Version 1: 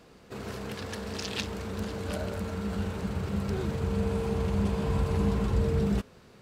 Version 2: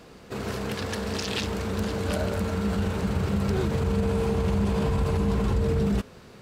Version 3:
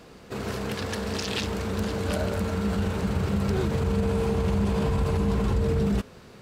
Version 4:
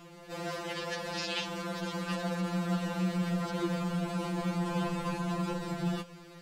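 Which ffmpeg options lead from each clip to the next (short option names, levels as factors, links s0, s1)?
-af "alimiter=limit=0.0668:level=0:latency=1:release=30,volume=2.11"
-af anull
-filter_complex "[0:a]acrossover=split=6400[s0][s1];[s1]acompressor=threshold=0.00251:ratio=4:attack=1:release=60[s2];[s0][s2]amix=inputs=2:normalize=0,afftfilt=real='re*2.83*eq(mod(b,8),0)':imag='im*2.83*eq(mod(b,8),0)':win_size=2048:overlap=0.75"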